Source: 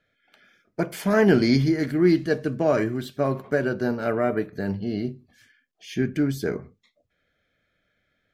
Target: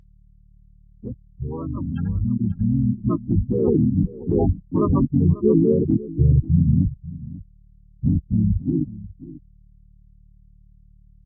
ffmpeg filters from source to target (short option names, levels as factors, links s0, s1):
-filter_complex "[0:a]aemphasis=mode=production:type=50kf,afftfilt=real='re*gte(hypot(re,im),0.316)':imag='im*gte(hypot(re,im),0.316)':win_size=1024:overlap=0.75,acompressor=threshold=0.0398:ratio=6,alimiter=level_in=2.66:limit=0.0631:level=0:latency=1:release=15,volume=0.376,dynaudnorm=f=240:g=17:m=4.47,asplit=3[s0][s1][s2];[s1]asetrate=22050,aresample=44100,atempo=2,volume=0.891[s3];[s2]asetrate=37084,aresample=44100,atempo=1.18921,volume=0.891[s4];[s0][s3][s4]amix=inputs=3:normalize=0,aeval=exprs='val(0)+0.00178*(sin(2*PI*50*n/s)+sin(2*PI*2*50*n/s)/2+sin(2*PI*3*50*n/s)/3+sin(2*PI*4*50*n/s)/4+sin(2*PI*5*50*n/s)/5)':c=same,asplit=2[s5][s6];[s6]aecho=0:1:400:0.141[s7];[s5][s7]amix=inputs=2:normalize=0,asetrate=32667,aresample=44100,volume=1.68" -ar 16000 -c:a libvorbis -b:a 64k